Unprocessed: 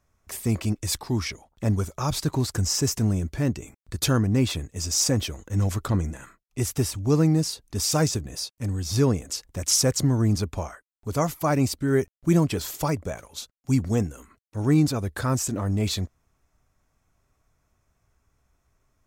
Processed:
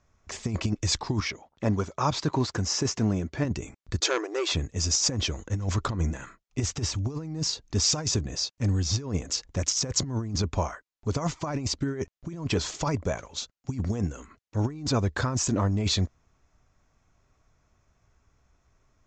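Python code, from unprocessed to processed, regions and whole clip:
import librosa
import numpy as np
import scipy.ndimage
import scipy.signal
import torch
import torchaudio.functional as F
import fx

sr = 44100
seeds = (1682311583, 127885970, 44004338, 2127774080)

y = fx.chain(x, sr, fx.highpass(hz=230.0, slope=6),
    fx.high_shelf(hz=6000.0, db=-11.0), at=(1.2, 3.45))
y = fx.chain(y, sr, fx.brickwall_highpass(low_hz=310.0),
    fx.transformer_sat(knee_hz=1600.0), at=(4.0, 4.52))
y = scipy.signal.sosfilt(scipy.signal.butter(12, 7300.0, 'lowpass', fs=sr, output='sos'), y)
y = fx.dynamic_eq(y, sr, hz=1000.0, q=6.2, threshold_db=-50.0, ratio=4.0, max_db=5)
y = fx.over_compress(y, sr, threshold_db=-25.0, ratio=-0.5)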